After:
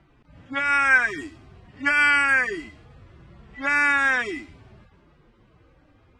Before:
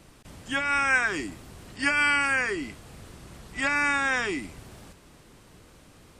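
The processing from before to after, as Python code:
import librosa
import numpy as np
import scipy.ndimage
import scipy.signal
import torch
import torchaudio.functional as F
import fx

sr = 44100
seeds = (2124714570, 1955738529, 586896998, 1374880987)

y = fx.hpss_only(x, sr, part='harmonic')
y = fx.dynamic_eq(y, sr, hz=1700.0, q=1.6, threshold_db=-38.0, ratio=4.0, max_db=7)
y = fx.env_lowpass(y, sr, base_hz=2200.0, full_db=-20.5)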